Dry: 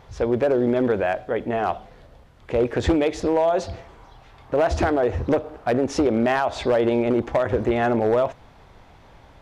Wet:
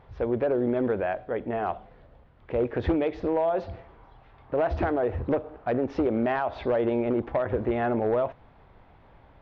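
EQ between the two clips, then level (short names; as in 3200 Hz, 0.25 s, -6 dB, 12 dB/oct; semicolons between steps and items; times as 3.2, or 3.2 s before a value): Gaussian blur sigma 2.6 samples; -5.0 dB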